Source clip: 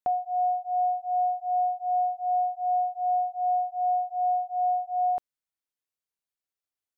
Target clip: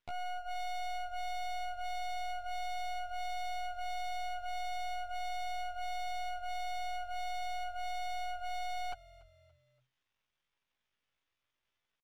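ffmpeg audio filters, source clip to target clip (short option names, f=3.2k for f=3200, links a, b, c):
-filter_complex "[0:a]equalizer=f=350:w=0.51:g=-9,bandreject=f=740:w=12,asplit=2[a][b];[b]acompressor=threshold=-47dB:ratio=6,volume=1.5dB[c];[a][c]amix=inputs=2:normalize=0,alimiter=level_in=9dB:limit=-24dB:level=0:latency=1:release=313,volume=-9dB,aresample=8000,aeval=exprs='clip(val(0),-1,0.00562)':c=same,aresample=44100,atempo=0.58,aeval=exprs='max(val(0),0)':c=same,asplit=4[d][e][f][g];[e]adelay=286,afreqshift=-43,volume=-21dB[h];[f]adelay=572,afreqshift=-86,volume=-28.7dB[i];[g]adelay=858,afreqshift=-129,volume=-36.5dB[j];[d][h][i][j]amix=inputs=4:normalize=0,volume=12dB"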